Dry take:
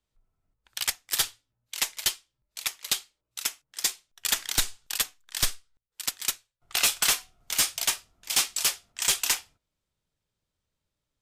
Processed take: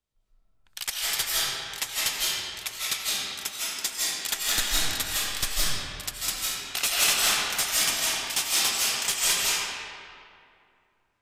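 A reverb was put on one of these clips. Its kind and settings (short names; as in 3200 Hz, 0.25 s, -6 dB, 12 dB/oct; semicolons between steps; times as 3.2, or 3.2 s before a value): digital reverb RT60 2.4 s, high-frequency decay 0.65×, pre-delay 0.12 s, DRR -8 dB; gain -4 dB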